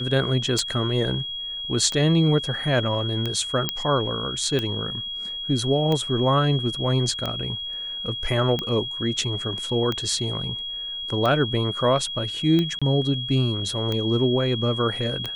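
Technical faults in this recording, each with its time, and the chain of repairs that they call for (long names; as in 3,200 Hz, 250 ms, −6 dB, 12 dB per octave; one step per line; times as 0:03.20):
scratch tick 45 rpm −13 dBFS
whistle 3,300 Hz −29 dBFS
0:03.69: click −6 dBFS
0:12.79–0:12.82: drop-out 26 ms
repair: click removal
notch filter 3,300 Hz, Q 30
repair the gap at 0:12.79, 26 ms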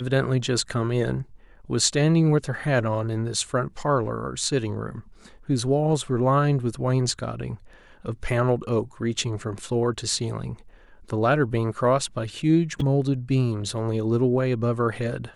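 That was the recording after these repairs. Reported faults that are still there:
none of them is left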